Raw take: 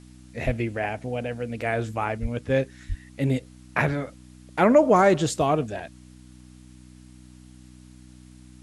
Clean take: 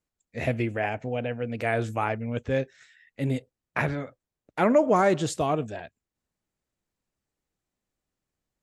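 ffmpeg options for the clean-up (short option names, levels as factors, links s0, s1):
-filter_complex "[0:a]bandreject=f=62.3:t=h:w=4,bandreject=f=124.6:t=h:w=4,bandreject=f=186.9:t=h:w=4,bandreject=f=249.2:t=h:w=4,bandreject=f=311.5:t=h:w=4,asplit=3[s0][s1][s2];[s0]afade=t=out:st=0.45:d=0.02[s3];[s1]highpass=f=140:w=0.5412,highpass=f=140:w=1.3066,afade=t=in:st=0.45:d=0.02,afade=t=out:st=0.57:d=0.02[s4];[s2]afade=t=in:st=0.57:d=0.02[s5];[s3][s4][s5]amix=inputs=3:normalize=0,asplit=3[s6][s7][s8];[s6]afade=t=out:st=2.21:d=0.02[s9];[s7]highpass=f=140:w=0.5412,highpass=f=140:w=1.3066,afade=t=in:st=2.21:d=0.02,afade=t=out:st=2.33:d=0.02[s10];[s8]afade=t=in:st=2.33:d=0.02[s11];[s9][s10][s11]amix=inputs=3:normalize=0,asplit=3[s12][s13][s14];[s12]afade=t=out:st=2.88:d=0.02[s15];[s13]highpass=f=140:w=0.5412,highpass=f=140:w=1.3066,afade=t=in:st=2.88:d=0.02,afade=t=out:st=3:d=0.02[s16];[s14]afade=t=in:st=3:d=0.02[s17];[s15][s16][s17]amix=inputs=3:normalize=0,agate=range=0.0891:threshold=0.00891,asetnsamples=n=441:p=0,asendcmd='2.5 volume volume -3.5dB',volume=1"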